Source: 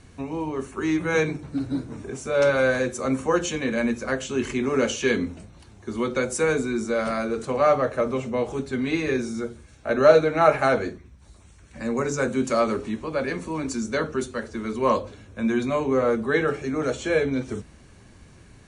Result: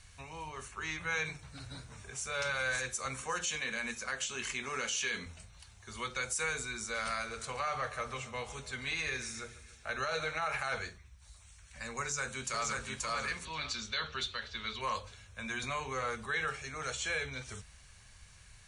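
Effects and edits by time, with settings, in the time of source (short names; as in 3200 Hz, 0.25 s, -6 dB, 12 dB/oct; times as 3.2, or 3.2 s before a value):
0.68–1.25 air absorption 60 m
1.81–2.24 echo throw 0.57 s, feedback 50%, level -3 dB
3.21–5.26 resonant low shelf 140 Hz -6.5 dB, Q 1.5
6.8–10.46 feedback echo 0.141 s, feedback 58%, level -17.5 dB
12–12.85 echo throw 0.53 s, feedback 15%, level -2.5 dB
13.45–14.81 synth low-pass 3700 Hz, resonance Q 4.1
15.63–16.26 three-band squash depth 70%
whole clip: passive tone stack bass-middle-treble 10-0-10; limiter -26 dBFS; dynamic EQ 600 Hz, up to -6 dB, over -55 dBFS, Q 5.2; gain +1.5 dB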